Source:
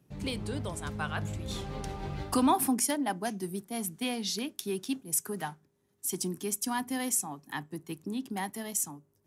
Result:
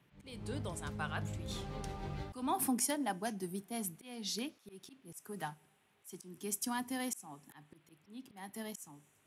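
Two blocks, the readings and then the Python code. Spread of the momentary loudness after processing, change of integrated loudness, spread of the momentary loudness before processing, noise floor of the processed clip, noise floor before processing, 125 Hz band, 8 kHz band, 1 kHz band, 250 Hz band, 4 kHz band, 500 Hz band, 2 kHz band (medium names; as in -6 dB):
19 LU, -7.0 dB, 11 LU, -71 dBFS, -72 dBFS, -6.0 dB, -9.0 dB, -7.5 dB, -8.0 dB, -7.5 dB, -7.5 dB, -6.5 dB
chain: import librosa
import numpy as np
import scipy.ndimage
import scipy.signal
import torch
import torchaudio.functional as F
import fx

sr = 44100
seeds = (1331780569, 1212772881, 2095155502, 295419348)

y = fx.rev_double_slope(x, sr, seeds[0], early_s=0.21, late_s=2.0, knee_db=-21, drr_db=18.5)
y = fx.auto_swell(y, sr, attack_ms=308.0)
y = fx.dmg_noise_band(y, sr, seeds[1], low_hz=410.0, high_hz=3200.0, level_db=-71.0)
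y = F.gain(torch.from_numpy(y), -5.0).numpy()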